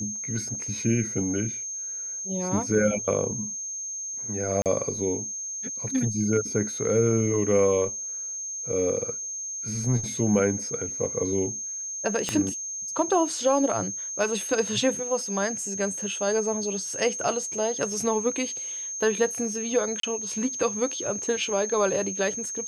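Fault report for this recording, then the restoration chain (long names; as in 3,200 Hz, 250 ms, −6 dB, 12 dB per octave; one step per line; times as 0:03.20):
whistle 6,400 Hz −31 dBFS
0:04.62–0:04.66: drop-out 38 ms
0:12.29: click −12 dBFS
0:20.00–0:20.03: drop-out 33 ms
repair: click removal
notch filter 6,400 Hz, Q 30
repair the gap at 0:04.62, 38 ms
repair the gap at 0:20.00, 33 ms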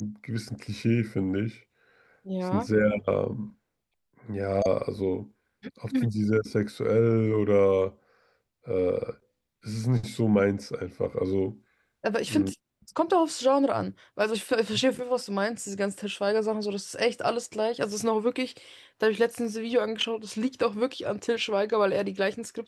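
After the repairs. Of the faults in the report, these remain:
0:12.29: click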